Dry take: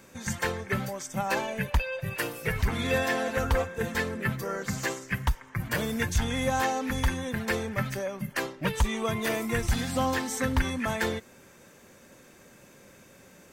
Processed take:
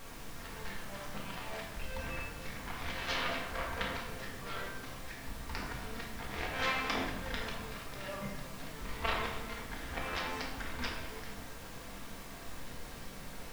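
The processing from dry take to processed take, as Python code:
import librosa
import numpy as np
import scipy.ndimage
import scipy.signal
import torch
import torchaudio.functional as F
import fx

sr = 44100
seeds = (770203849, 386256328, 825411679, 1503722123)

y = scipy.signal.sosfilt(scipy.signal.butter(2, 1500.0, 'lowpass', fs=sr, output='sos'), x)
y = fx.peak_eq(y, sr, hz=270.0, db=-11.0, octaves=2.0)
y = fx.hum_notches(y, sr, base_hz=60, count=3)
y = fx.cheby_harmonics(y, sr, harmonics=(7,), levels_db=(-13,), full_scale_db=-17.0)
y = fx.low_shelf(y, sr, hz=500.0, db=-8.5)
y = y + 10.0 ** (-18.0 / 20.0) * np.pad(y, (int(222 * sr / 1000.0), 0))[:len(y)]
y = fx.auto_swell(y, sr, attack_ms=434.0)
y = fx.dmg_noise_colour(y, sr, seeds[0], colour='pink', level_db=-61.0)
y = fx.room_shoebox(y, sr, seeds[1], volume_m3=370.0, walls='mixed', distance_m=1.7)
y = y * librosa.db_to_amplitude(8.5)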